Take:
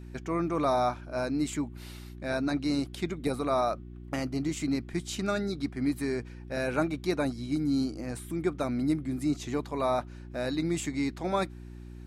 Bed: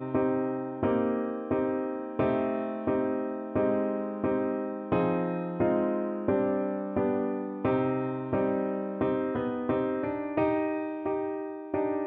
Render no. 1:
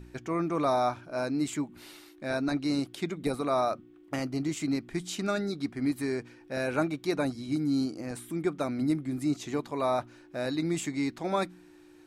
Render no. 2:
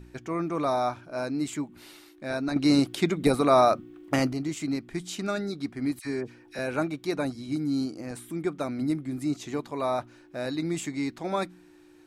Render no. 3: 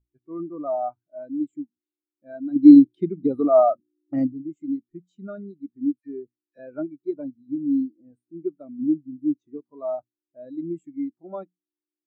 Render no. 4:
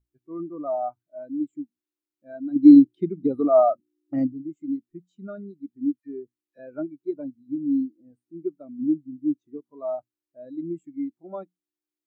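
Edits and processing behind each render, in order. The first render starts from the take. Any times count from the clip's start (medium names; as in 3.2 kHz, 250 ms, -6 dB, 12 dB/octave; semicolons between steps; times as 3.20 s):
de-hum 60 Hz, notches 4
2.56–4.33 s: gain +8 dB; 5.99–6.59 s: phase dispersion lows, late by 57 ms, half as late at 1.5 kHz
loudness maximiser +12 dB; spectral contrast expander 2.5:1
trim -1 dB; peak limiter -3 dBFS, peak gain reduction 1 dB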